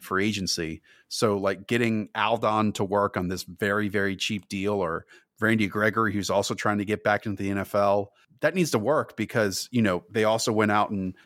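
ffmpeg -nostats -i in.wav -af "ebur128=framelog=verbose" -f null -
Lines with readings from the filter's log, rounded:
Integrated loudness:
  I:         -25.7 LUFS
  Threshold: -35.8 LUFS
Loudness range:
  LRA:         1.4 LU
  Threshold: -45.9 LUFS
  LRA low:   -26.5 LUFS
  LRA high:  -25.1 LUFS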